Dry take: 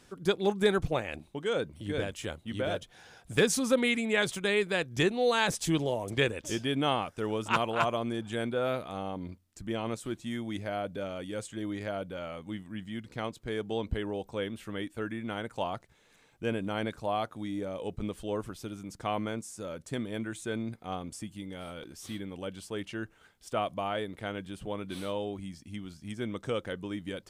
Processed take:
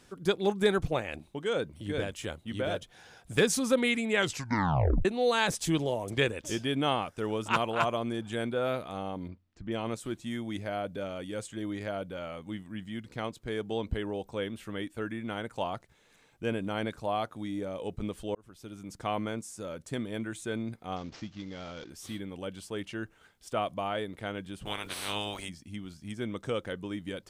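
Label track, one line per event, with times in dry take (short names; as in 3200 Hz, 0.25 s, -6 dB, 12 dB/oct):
4.160000	4.160000	tape stop 0.89 s
9.280000	9.720000	air absorption 210 m
18.350000	18.930000	fade in linear
20.960000	21.900000	CVSD 32 kbps
24.650000	25.480000	spectral limiter ceiling under each frame's peak by 28 dB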